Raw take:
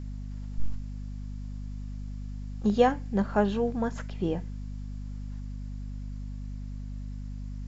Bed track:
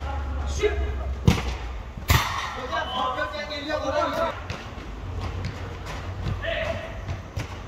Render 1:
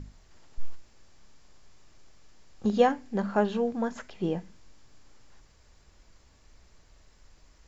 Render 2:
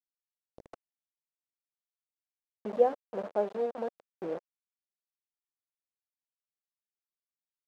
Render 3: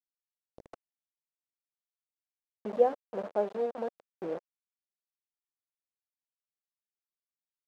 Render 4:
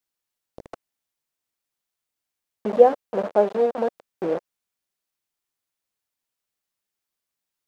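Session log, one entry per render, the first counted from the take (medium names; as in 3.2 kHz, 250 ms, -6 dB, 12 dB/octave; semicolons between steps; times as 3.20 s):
hum notches 50/100/150/200/250 Hz
bit crusher 5-bit; band-pass filter 550 Hz, Q 2.5
no audible change
trim +11 dB; peak limiter -2 dBFS, peak gain reduction 1 dB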